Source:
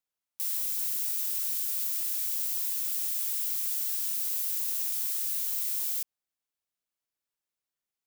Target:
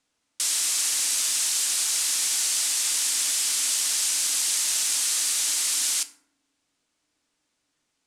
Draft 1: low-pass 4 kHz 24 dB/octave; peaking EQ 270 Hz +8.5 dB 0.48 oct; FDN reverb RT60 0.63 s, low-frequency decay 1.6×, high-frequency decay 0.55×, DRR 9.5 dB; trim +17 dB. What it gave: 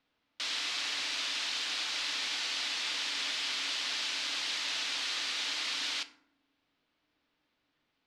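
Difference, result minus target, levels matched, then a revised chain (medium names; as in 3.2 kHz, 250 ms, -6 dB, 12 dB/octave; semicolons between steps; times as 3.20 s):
8 kHz band -10.5 dB
low-pass 8.9 kHz 24 dB/octave; peaking EQ 270 Hz +8.5 dB 0.48 oct; FDN reverb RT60 0.63 s, low-frequency decay 1.6×, high-frequency decay 0.55×, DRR 9.5 dB; trim +17 dB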